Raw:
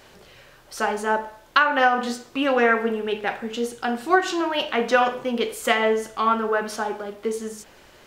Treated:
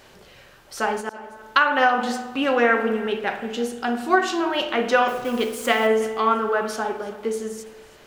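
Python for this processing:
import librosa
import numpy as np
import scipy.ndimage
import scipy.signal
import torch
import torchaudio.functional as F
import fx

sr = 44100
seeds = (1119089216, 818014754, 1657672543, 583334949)

p1 = fx.delta_hold(x, sr, step_db=-36.5, at=(5.08, 5.87))
p2 = fx.rev_spring(p1, sr, rt60_s=1.2, pass_ms=(50,), chirp_ms=65, drr_db=10.5)
p3 = fx.auto_swell(p2, sr, attack_ms=413.0, at=(1.0, 1.42), fade=0.02)
y = p3 + fx.echo_single(p3, sr, ms=330, db=-19.5, dry=0)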